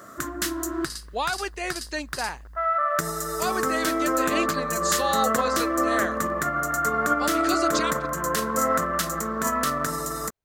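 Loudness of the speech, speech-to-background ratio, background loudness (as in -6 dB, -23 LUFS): -30.0 LUFS, -4.5 dB, -25.5 LUFS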